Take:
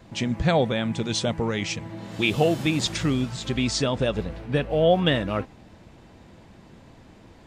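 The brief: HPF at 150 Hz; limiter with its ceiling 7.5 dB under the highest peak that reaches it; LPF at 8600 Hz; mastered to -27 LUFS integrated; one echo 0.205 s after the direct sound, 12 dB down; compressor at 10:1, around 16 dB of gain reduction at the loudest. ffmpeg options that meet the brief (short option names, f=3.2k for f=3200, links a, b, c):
-af "highpass=150,lowpass=8.6k,acompressor=threshold=-32dB:ratio=10,alimiter=level_in=5dB:limit=-24dB:level=0:latency=1,volume=-5dB,aecho=1:1:205:0.251,volume=12dB"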